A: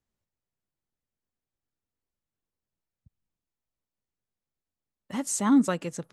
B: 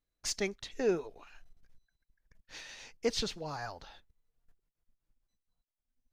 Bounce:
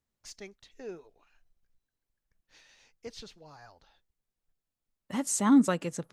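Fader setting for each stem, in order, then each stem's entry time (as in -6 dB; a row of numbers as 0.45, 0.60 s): -0.5, -12.0 dB; 0.00, 0.00 s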